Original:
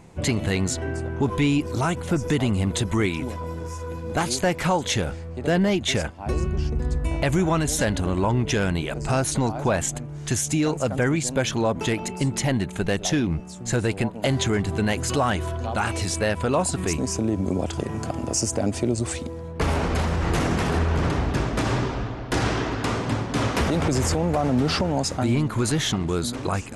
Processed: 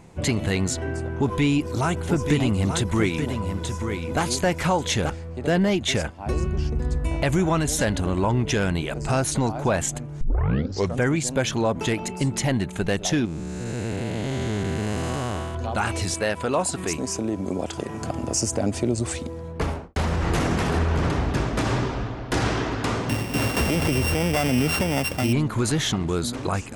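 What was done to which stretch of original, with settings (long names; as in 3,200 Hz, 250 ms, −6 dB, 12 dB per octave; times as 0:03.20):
0:00.96–0:05.10: single-tap delay 883 ms −7 dB
0:10.21: tape start 0.80 s
0:13.25–0:15.55: spectrum smeared in time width 470 ms
0:16.14–0:18.02: low-shelf EQ 140 Hz −11 dB
0:19.51–0:19.96: fade out and dull
0:23.09–0:25.33: samples sorted by size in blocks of 16 samples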